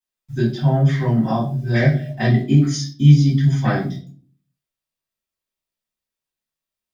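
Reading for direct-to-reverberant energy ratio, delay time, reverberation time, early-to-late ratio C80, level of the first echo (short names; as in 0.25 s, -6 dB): -9.5 dB, none, 0.45 s, 13.5 dB, none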